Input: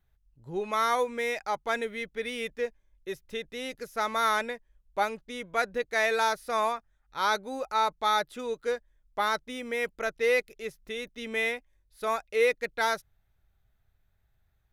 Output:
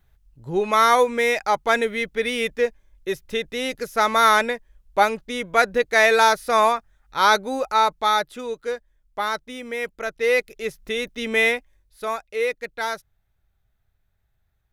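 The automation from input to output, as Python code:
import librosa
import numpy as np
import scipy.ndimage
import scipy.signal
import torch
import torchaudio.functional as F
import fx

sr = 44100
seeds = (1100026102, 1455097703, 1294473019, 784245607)

y = fx.gain(x, sr, db=fx.line((7.45, 10.0), (8.66, 2.5), (10.05, 2.5), (10.78, 10.0), (11.55, 10.0), (12.24, 0.5)))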